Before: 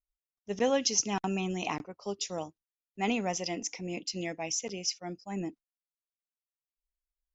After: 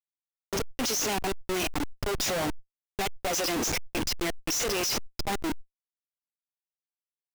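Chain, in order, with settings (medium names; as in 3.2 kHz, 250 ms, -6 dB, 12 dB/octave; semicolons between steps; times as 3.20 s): gate -46 dBFS, range -10 dB; high-pass 280 Hz 24 dB/octave; treble shelf 2.5 kHz +5 dB; in parallel at +2 dB: peak limiter -25.5 dBFS, peak gain reduction 15.5 dB; on the sum: fuzz box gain 40 dB, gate -47 dBFS; trance gate "x..xx.x..xxxxx" 171 bpm -24 dB; Schmitt trigger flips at -28 dBFS; decay stretcher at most 48 dB/s; trim -8.5 dB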